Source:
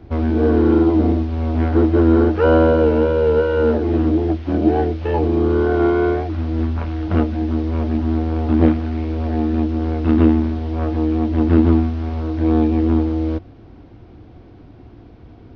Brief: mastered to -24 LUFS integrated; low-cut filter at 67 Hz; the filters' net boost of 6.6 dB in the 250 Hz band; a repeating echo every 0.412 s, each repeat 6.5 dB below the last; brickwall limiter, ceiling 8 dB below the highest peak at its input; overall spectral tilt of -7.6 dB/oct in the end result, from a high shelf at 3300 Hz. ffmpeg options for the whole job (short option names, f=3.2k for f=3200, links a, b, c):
-af "highpass=67,equalizer=f=250:t=o:g=8.5,highshelf=f=3.3k:g=4.5,alimiter=limit=-5dB:level=0:latency=1,aecho=1:1:412|824|1236|1648|2060|2472:0.473|0.222|0.105|0.0491|0.0231|0.0109,volume=-10.5dB"